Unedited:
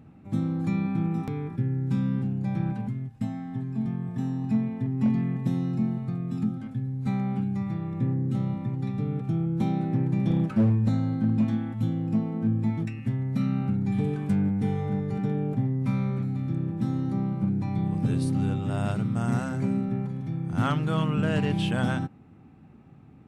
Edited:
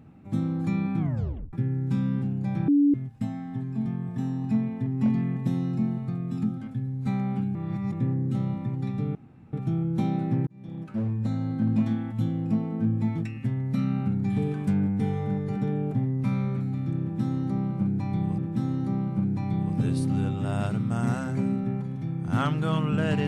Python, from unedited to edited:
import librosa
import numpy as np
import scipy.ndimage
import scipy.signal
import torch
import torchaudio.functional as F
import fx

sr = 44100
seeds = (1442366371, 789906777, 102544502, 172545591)

y = fx.edit(x, sr, fx.tape_stop(start_s=0.99, length_s=0.54),
    fx.bleep(start_s=2.68, length_s=0.26, hz=287.0, db=-16.0),
    fx.reverse_span(start_s=7.55, length_s=0.37),
    fx.insert_room_tone(at_s=9.15, length_s=0.38),
    fx.fade_in_span(start_s=10.09, length_s=1.25),
    fx.repeat(start_s=16.63, length_s=1.37, count=2), tone=tone)